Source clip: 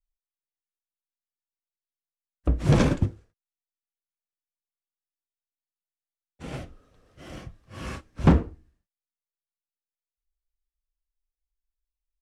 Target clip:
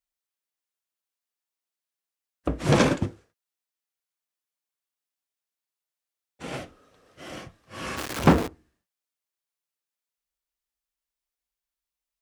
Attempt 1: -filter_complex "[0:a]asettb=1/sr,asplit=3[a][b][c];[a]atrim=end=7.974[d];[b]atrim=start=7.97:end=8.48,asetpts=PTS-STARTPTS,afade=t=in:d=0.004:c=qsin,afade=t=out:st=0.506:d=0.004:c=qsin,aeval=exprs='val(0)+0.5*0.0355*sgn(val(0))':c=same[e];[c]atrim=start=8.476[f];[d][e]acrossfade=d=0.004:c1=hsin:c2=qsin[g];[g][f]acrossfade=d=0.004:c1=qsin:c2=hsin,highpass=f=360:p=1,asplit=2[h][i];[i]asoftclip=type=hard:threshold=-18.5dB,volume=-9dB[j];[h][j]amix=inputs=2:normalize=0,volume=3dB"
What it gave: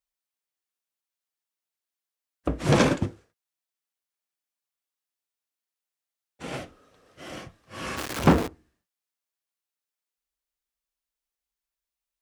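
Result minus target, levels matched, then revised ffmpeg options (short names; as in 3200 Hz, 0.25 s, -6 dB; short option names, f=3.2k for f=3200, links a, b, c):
hard clip: distortion +17 dB
-filter_complex "[0:a]asettb=1/sr,asplit=3[a][b][c];[a]atrim=end=7.974[d];[b]atrim=start=7.97:end=8.48,asetpts=PTS-STARTPTS,afade=t=in:d=0.004:c=qsin,afade=t=out:st=0.506:d=0.004:c=qsin,aeval=exprs='val(0)+0.5*0.0355*sgn(val(0))':c=same[e];[c]atrim=start=8.476[f];[d][e]acrossfade=d=0.004:c1=hsin:c2=qsin[g];[g][f]acrossfade=d=0.004:c1=qsin:c2=hsin,highpass=f=360:p=1,asplit=2[h][i];[i]asoftclip=type=hard:threshold=-10dB,volume=-9dB[j];[h][j]amix=inputs=2:normalize=0,volume=3dB"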